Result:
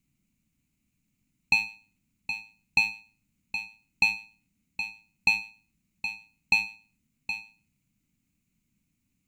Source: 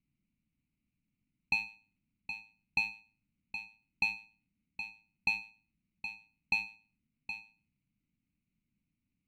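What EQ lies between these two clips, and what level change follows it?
high shelf 5300 Hz +6 dB; bell 7000 Hz +8 dB 0.31 oct; +7.0 dB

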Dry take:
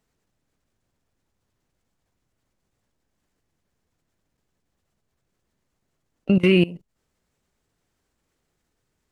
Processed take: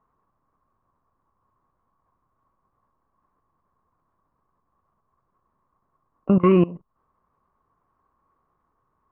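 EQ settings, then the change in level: synth low-pass 1100 Hz, resonance Q 13; 0.0 dB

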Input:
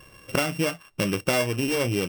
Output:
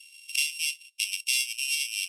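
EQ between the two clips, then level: steep high-pass 2400 Hz 72 dB/oct; LPF 12000 Hz 24 dB/oct; high shelf 3400 Hz +6.5 dB; 0.0 dB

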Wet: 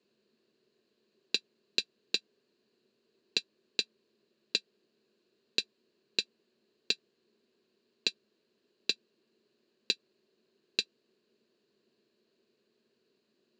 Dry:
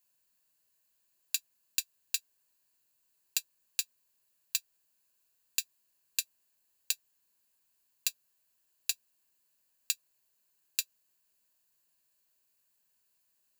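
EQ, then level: speaker cabinet 190–4700 Hz, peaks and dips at 210 Hz +8 dB, 460 Hz +8 dB, 710 Hz +10 dB, 1200 Hz +4 dB, 4000 Hz +5 dB; resonant low shelf 540 Hz +11 dB, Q 3; +4.5 dB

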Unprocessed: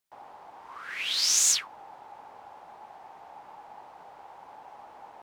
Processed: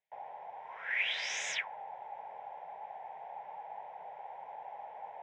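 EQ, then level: dynamic EQ 1600 Hz, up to +5 dB, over -47 dBFS, Q 1.3; speaker cabinet 210–4000 Hz, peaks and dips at 230 Hz -9 dB, 1500 Hz -8 dB, 2800 Hz -7 dB; fixed phaser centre 1200 Hz, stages 6; +4.0 dB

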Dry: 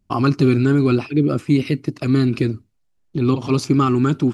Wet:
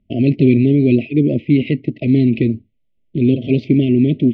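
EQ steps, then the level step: brick-wall FIR band-stop 690–1900 Hz; Chebyshev low-pass 3300 Hz, order 4; bell 230 Hz +7 dB 0.23 oct; +3.0 dB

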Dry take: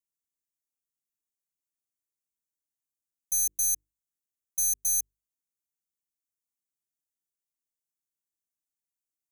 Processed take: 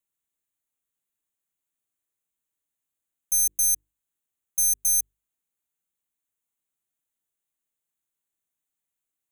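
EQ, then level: Butterworth band-stop 5100 Hz, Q 2.4; +5.5 dB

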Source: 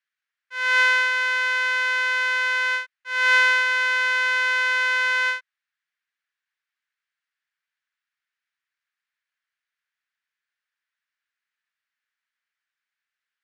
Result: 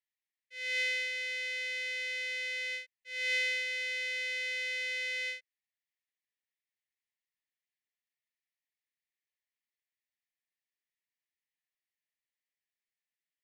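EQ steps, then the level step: elliptic band-stop 750–1800 Hz, stop band 40 dB; bell 1000 Hz -11.5 dB 0.54 oct; -8.5 dB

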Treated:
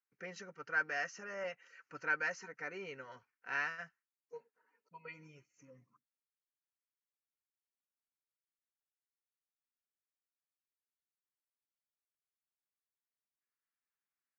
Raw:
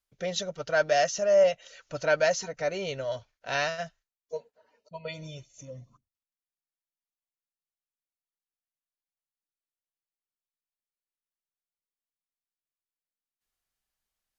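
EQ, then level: BPF 340–3200 Hz; bell 1000 Hz -2 dB; fixed phaser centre 1500 Hz, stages 4; -3.0 dB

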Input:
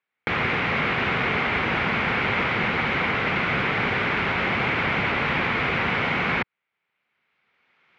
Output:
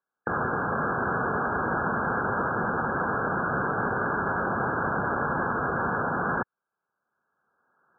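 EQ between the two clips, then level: brick-wall FIR low-pass 1700 Hz; low shelf 190 Hz -6 dB; 0.0 dB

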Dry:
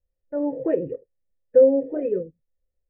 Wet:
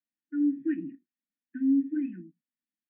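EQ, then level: steep high-pass 210 Hz 36 dB/oct; brick-wall FIR band-stop 330–1400 Hz; air absorption 340 m; +2.5 dB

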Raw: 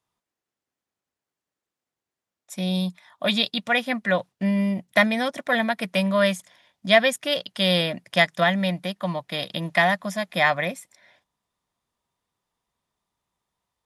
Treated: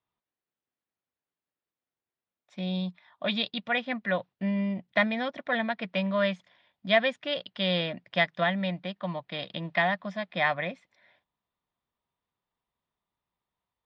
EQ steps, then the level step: LPF 4000 Hz 24 dB/oct; -6.0 dB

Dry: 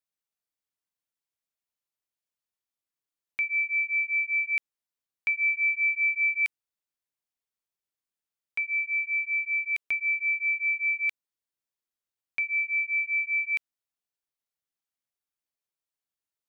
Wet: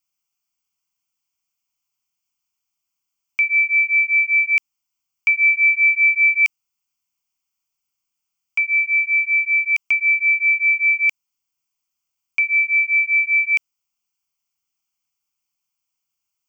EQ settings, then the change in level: high shelf 2200 Hz +8 dB; fixed phaser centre 2600 Hz, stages 8; +7.0 dB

